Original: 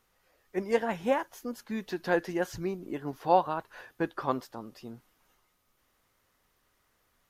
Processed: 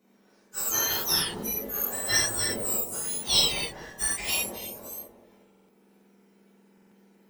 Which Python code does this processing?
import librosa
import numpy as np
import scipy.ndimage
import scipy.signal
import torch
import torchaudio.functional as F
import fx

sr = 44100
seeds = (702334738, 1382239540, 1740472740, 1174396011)

p1 = fx.octave_mirror(x, sr, pivot_hz=1700.0)
p2 = scipy.signal.sosfilt(scipy.signal.butter(2, 200.0, 'highpass', fs=sr, output='sos'), p1)
p3 = fx.sample_hold(p2, sr, seeds[0], rate_hz=1700.0, jitter_pct=0)
p4 = p2 + (p3 * 10.0 ** (-10.5 / 20.0))
p5 = fx.high_shelf(p4, sr, hz=9900.0, db=10.0)
p6 = p5 + fx.echo_bbd(p5, sr, ms=183, stages=1024, feedback_pct=44, wet_db=-4, dry=0)
p7 = fx.rev_gated(p6, sr, seeds[1], gate_ms=130, shape='flat', drr_db=-7.0)
p8 = fx.buffer_glitch(p7, sr, at_s=(5.5, 6.73), block=2048, repeats=3)
p9 = fx.band_squash(p8, sr, depth_pct=40, at=(1.1, 1.53))
y = p9 * 10.0 ** (-1.5 / 20.0)